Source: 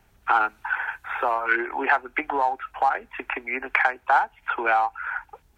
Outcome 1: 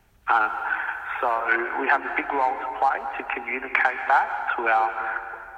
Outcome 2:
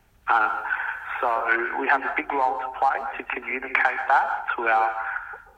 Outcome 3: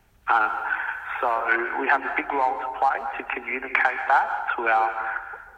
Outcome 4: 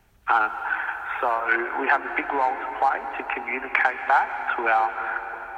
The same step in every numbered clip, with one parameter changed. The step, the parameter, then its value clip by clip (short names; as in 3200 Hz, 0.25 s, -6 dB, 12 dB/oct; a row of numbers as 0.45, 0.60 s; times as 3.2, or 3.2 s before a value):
plate-style reverb, RT60: 2.3, 0.52, 1.1, 5.3 s